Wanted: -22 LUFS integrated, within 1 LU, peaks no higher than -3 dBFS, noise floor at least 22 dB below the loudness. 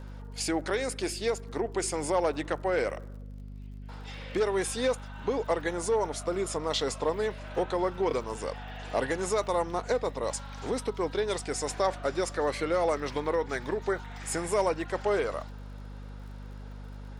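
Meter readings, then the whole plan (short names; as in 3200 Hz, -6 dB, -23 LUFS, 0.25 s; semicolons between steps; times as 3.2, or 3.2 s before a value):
ticks 50/s; hum 50 Hz; harmonics up to 250 Hz; hum level -40 dBFS; loudness -30.5 LUFS; peak -14.5 dBFS; loudness target -22.0 LUFS
-> de-click; notches 50/100/150/200/250 Hz; gain +8.5 dB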